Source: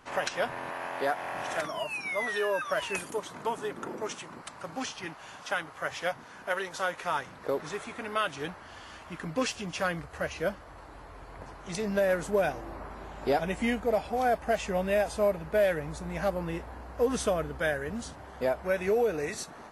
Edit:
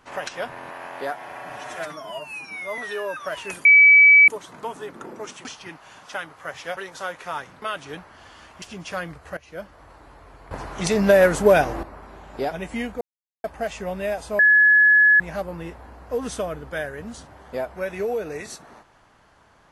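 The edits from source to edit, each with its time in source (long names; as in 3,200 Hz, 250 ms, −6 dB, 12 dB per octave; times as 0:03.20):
0:01.13–0:02.23: time-stretch 1.5×
0:03.10: insert tone 2,290 Hz −8 dBFS 0.63 s
0:04.27–0:04.82: remove
0:06.14–0:06.56: remove
0:07.41–0:08.13: remove
0:09.13–0:09.50: remove
0:10.25–0:10.68: fade in, from −17.5 dB
0:11.39–0:12.71: clip gain +11.5 dB
0:13.89–0:14.32: silence
0:15.27–0:16.08: beep over 1,700 Hz −11 dBFS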